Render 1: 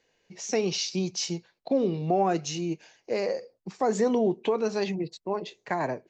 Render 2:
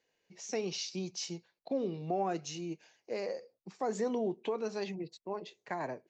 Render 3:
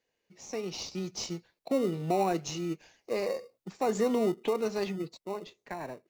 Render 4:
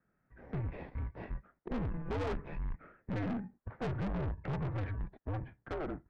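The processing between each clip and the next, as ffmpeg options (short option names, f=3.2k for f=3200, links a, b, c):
-af "lowshelf=f=74:g=-10.5,volume=-8.5dB"
-filter_complex "[0:a]dynaudnorm=f=200:g=11:m=7dB,asplit=2[a][b];[b]acrusher=samples=27:mix=1:aa=0.000001,volume=-10.5dB[c];[a][c]amix=inputs=2:normalize=0,volume=-3dB"
-af "highpass=f=250:t=q:w=0.5412,highpass=f=250:t=q:w=1.307,lowpass=f=2k:t=q:w=0.5176,lowpass=f=2k:t=q:w=0.7071,lowpass=f=2k:t=q:w=1.932,afreqshift=-300,aeval=exprs='(tanh(100*val(0)+0.25)-tanh(0.25))/100':c=same,volume=6.5dB"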